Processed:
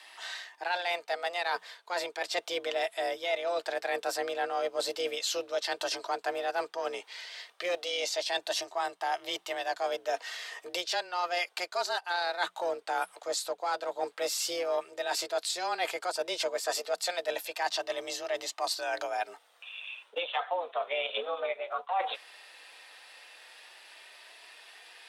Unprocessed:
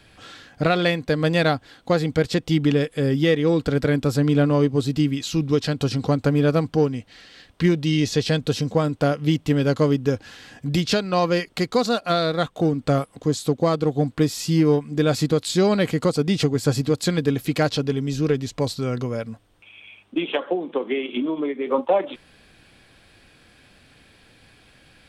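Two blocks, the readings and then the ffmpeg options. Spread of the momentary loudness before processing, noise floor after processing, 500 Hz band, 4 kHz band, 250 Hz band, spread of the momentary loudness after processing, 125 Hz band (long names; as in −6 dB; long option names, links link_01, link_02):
6 LU, −63 dBFS, −11.0 dB, −4.0 dB, −28.5 dB, 18 LU, below −40 dB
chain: -af "highpass=580,areverse,acompressor=threshold=-32dB:ratio=6,areverse,afreqshift=180,flanger=delay=1:depth=2.8:regen=-54:speed=0.11:shape=sinusoidal,tremolo=f=200:d=0.261,volume=8.5dB"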